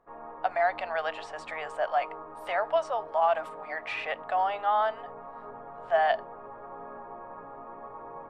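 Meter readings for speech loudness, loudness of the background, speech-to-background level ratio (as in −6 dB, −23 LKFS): −29.5 LKFS, −43.5 LKFS, 14.0 dB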